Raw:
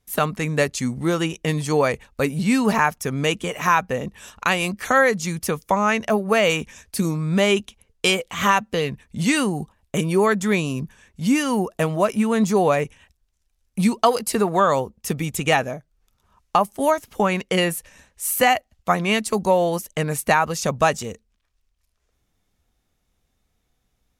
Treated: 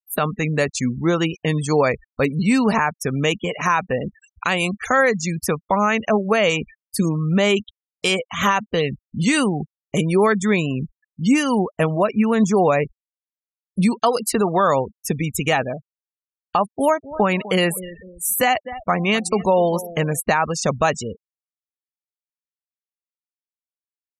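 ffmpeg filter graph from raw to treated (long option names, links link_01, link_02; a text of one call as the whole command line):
ffmpeg -i in.wav -filter_complex "[0:a]asettb=1/sr,asplit=3[link_01][link_02][link_03];[link_01]atrim=end=16.644[link_04];[link_02]atrim=start=16.64:end=20.2,asetpts=PTS-STARTPTS,afade=type=in:duration=0.004:curve=qsin,afade=type=out:start_time=3.556:duration=0.004:curve=qsin,acompressor=mode=upward:threshold=-34dB:ratio=2.5:attack=3.2:release=140:knee=2.83:detection=peak,asplit=2[link_05][link_06];[link_06]adelay=251,lowpass=frequency=2300:poles=1,volume=-16.5dB,asplit=2[link_07][link_08];[link_08]adelay=251,lowpass=frequency=2300:poles=1,volume=0.41,asplit=2[link_09][link_10];[link_10]adelay=251,lowpass=frequency=2300:poles=1,volume=0.41,asplit=2[link_11][link_12];[link_12]adelay=251,lowpass=frequency=2300:poles=1,volume=0.41[link_13];[link_05][link_07][link_09][link_11][link_13]amix=inputs=5:normalize=0,atrim=end_sample=156996[link_14];[link_03]atrim=start=20.196[link_15];[link_04][link_14]acrossfade=duration=0.004:curve1=hsin:curve2=qsin[link_16];[link_16][link_15]acrossfade=duration=0.004:curve1=qsin:curve2=hsin,afftfilt=real='re*gte(hypot(re,im),0.0316)':imag='im*gte(hypot(re,im),0.0316)':win_size=1024:overlap=0.75,alimiter=limit=-10dB:level=0:latency=1:release=52,volume=2.5dB" out.wav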